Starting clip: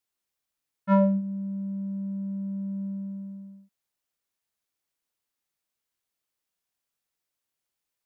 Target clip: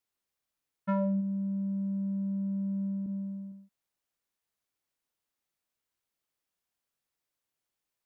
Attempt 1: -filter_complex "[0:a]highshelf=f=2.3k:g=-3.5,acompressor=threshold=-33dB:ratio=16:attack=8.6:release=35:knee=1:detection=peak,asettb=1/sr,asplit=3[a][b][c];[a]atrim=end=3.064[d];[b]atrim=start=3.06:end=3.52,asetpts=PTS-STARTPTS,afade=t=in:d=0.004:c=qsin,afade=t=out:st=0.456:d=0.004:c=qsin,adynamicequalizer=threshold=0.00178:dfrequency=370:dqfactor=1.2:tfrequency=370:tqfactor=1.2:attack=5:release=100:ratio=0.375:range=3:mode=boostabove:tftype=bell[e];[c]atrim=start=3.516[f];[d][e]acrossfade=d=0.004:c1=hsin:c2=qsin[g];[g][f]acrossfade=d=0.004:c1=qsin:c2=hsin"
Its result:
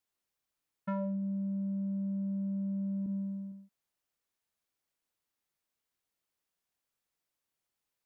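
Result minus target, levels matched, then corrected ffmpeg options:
compressor: peak gain reduction +5.5 dB
-filter_complex "[0:a]highshelf=f=2.3k:g=-3.5,acompressor=threshold=-27dB:ratio=16:attack=8.6:release=35:knee=1:detection=peak,asettb=1/sr,asplit=3[a][b][c];[a]atrim=end=3.064[d];[b]atrim=start=3.06:end=3.52,asetpts=PTS-STARTPTS,afade=t=in:d=0.004:c=qsin,afade=t=out:st=0.456:d=0.004:c=qsin,adynamicequalizer=threshold=0.00178:dfrequency=370:dqfactor=1.2:tfrequency=370:tqfactor=1.2:attack=5:release=100:ratio=0.375:range=3:mode=boostabove:tftype=bell[e];[c]atrim=start=3.516[f];[d][e]acrossfade=d=0.004:c1=hsin:c2=qsin[g];[g][f]acrossfade=d=0.004:c1=qsin:c2=hsin"

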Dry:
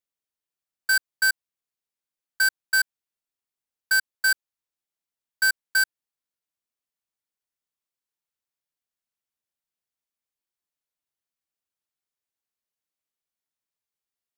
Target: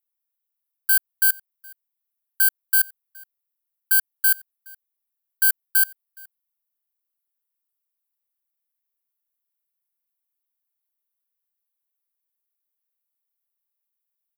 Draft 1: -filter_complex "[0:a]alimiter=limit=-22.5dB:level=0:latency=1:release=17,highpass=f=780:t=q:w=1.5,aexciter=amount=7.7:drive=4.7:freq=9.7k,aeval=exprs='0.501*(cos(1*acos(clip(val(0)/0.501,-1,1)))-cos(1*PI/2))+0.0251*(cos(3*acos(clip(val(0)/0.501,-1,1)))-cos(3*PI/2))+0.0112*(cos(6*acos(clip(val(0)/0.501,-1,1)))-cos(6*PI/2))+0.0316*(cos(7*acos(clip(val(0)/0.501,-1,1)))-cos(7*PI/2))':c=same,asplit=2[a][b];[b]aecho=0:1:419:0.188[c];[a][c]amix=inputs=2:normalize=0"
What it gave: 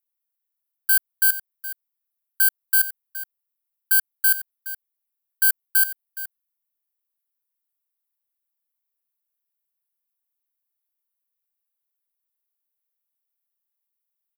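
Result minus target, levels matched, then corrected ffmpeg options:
echo-to-direct +11.5 dB
-filter_complex "[0:a]alimiter=limit=-22.5dB:level=0:latency=1:release=17,highpass=f=780:t=q:w=1.5,aexciter=amount=7.7:drive=4.7:freq=9.7k,aeval=exprs='0.501*(cos(1*acos(clip(val(0)/0.501,-1,1)))-cos(1*PI/2))+0.0251*(cos(3*acos(clip(val(0)/0.501,-1,1)))-cos(3*PI/2))+0.0112*(cos(6*acos(clip(val(0)/0.501,-1,1)))-cos(6*PI/2))+0.0316*(cos(7*acos(clip(val(0)/0.501,-1,1)))-cos(7*PI/2))':c=same,asplit=2[a][b];[b]aecho=0:1:419:0.0501[c];[a][c]amix=inputs=2:normalize=0"

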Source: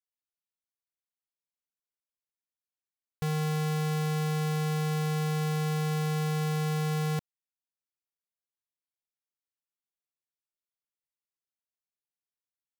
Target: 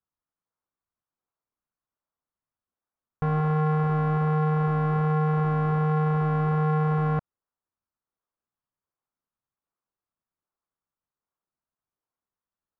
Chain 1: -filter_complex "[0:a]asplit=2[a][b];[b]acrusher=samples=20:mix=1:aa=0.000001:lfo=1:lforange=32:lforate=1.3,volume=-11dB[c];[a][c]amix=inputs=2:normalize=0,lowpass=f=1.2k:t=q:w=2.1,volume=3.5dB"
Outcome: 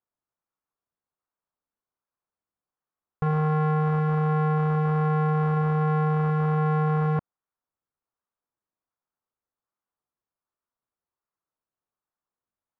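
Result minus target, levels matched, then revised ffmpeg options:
decimation with a swept rate: distortion -7 dB
-filter_complex "[0:a]asplit=2[a][b];[b]acrusher=samples=58:mix=1:aa=0.000001:lfo=1:lforange=92.8:lforate=1.3,volume=-11dB[c];[a][c]amix=inputs=2:normalize=0,lowpass=f=1.2k:t=q:w=2.1,volume=3.5dB"

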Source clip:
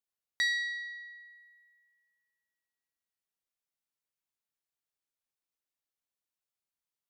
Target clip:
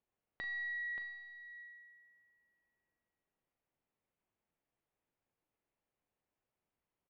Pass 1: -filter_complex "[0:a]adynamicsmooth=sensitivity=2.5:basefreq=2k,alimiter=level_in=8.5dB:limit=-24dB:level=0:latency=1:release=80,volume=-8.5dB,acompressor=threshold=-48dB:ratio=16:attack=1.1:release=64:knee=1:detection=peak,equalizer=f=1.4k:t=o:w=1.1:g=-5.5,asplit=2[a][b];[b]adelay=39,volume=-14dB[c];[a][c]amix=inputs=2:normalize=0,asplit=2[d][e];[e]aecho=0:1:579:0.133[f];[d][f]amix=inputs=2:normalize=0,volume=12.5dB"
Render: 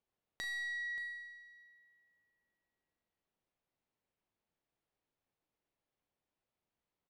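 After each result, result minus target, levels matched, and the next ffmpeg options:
4000 Hz band +8.0 dB; echo-to-direct -8.5 dB
-filter_complex "[0:a]adynamicsmooth=sensitivity=2.5:basefreq=2k,alimiter=level_in=8.5dB:limit=-24dB:level=0:latency=1:release=80,volume=-8.5dB,acompressor=threshold=-48dB:ratio=16:attack=1.1:release=64:knee=1:detection=peak,lowpass=f=3k:w=0.5412,lowpass=f=3k:w=1.3066,equalizer=f=1.4k:t=o:w=1.1:g=-5.5,asplit=2[a][b];[b]adelay=39,volume=-14dB[c];[a][c]amix=inputs=2:normalize=0,asplit=2[d][e];[e]aecho=0:1:579:0.133[f];[d][f]amix=inputs=2:normalize=0,volume=12.5dB"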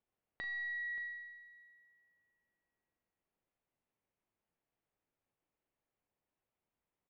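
echo-to-direct -8.5 dB
-filter_complex "[0:a]adynamicsmooth=sensitivity=2.5:basefreq=2k,alimiter=level_in=8.5dB:limit=-24dB:level=0:latency=1:release=80,volume=-8.5dB,acompressor=threshold=-48dB:ratio=16:attack=1.1:release=64:knee=1:detection=peak,lowpass=f=3k:w=0.5412,lowpass=f=3k:w=1.3066,equalizer=f=1.4k:t=o:w=1.1:g=-5.5,asplit=2[a][b];[b]adelay=39,volume=-14dB[c];[a][c]amix=inputs=2:normalize=0,asplit=2[d][e];[e]aecho=0:1:579:0.355[f];[d][f]amix=inputs=2:normalize=0,volume=12.5dB"

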